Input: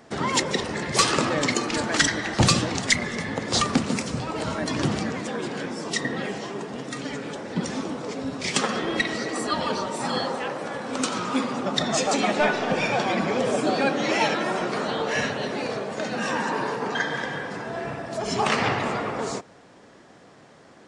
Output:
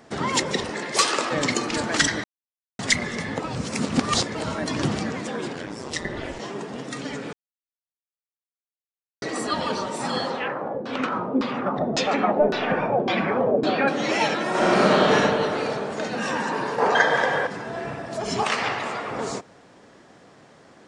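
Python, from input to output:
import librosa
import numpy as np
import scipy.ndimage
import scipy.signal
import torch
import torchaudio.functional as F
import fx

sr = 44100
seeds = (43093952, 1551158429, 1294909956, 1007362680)

y = fx.highpass(x, sr, hz=fx.line((0.69, 210.0), (1.3, 470.0)), slope=12, at=(0.69, 1.3), fade=0.02)
y = fx.ring_mod(y, sr, carrier_hz=fx.line((5.53, 39.0), (6.38, 160.0)), at=(5.53, 6.38), fade=0.02)
y = fx.filter_lfo_lowpass(y, sr, shape='saw_down', hz=1.8, low_hz=370.0, high_hz=4700.0, q=1.9, at=(10.3, 13.88))
y = fx.reverb_throw(y, sr, start_s=14.49, length_s=0.57, rt60_s=2.9, drr_db=-9.0)
y = fx.curve_eq(y, sr, hz=(280.0, 560.0, 3300.0), db=(0, 12, 4), at=(16.78, 17.47))
y = fx.low_shelf(y, sr, hz=350.0, db=-11.5, at=(18.43, 19.11))
y = fx.edit(y, sr, fx.silence(start_s=2.24, length_s=0.55),
    fx.reverse_span(start_s=3.4, length_s=0.95),
    fx.silence(start_s=7.33, length_s=1.89), tone=tone)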